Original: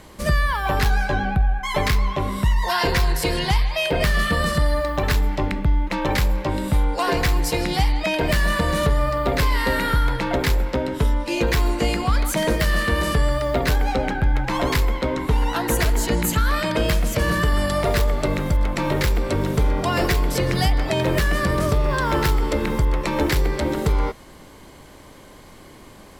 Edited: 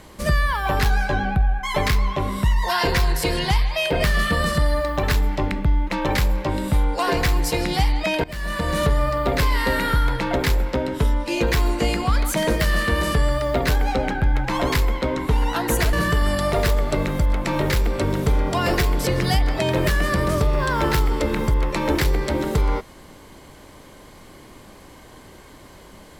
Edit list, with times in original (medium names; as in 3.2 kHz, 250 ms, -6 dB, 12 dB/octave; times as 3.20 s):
8.24–8.81 s: fade in, from -22 dB
15.93–17.24 s: delete